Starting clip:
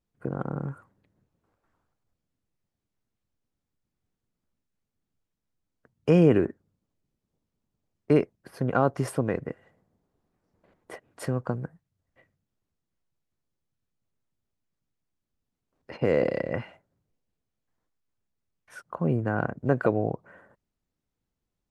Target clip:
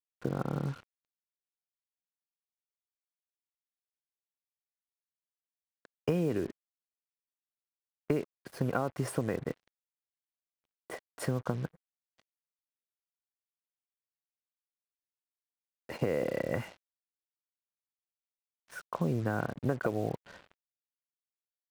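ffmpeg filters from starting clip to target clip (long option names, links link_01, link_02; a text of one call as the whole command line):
ffmpeg -i in.wav -af "acompressor=threshold=-26dB:ratio=10,acrusher=bits=7:mix=0:aa=0.5" out.wav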